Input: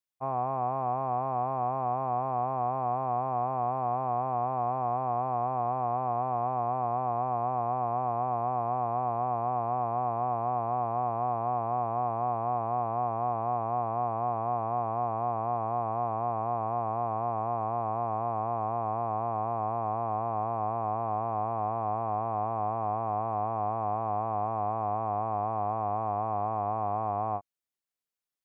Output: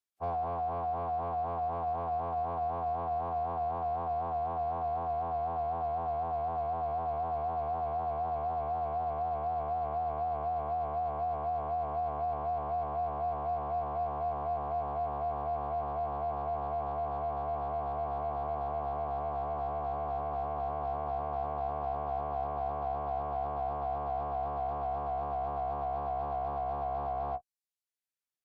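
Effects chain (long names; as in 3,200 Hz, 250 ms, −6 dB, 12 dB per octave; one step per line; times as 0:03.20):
reverb reduction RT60 0.69 s
harmonic generator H 7 −36 dB, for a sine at −21 dBFS
phase-vocoder pitch shift with formants kept −7.5 semitones
level −1 dB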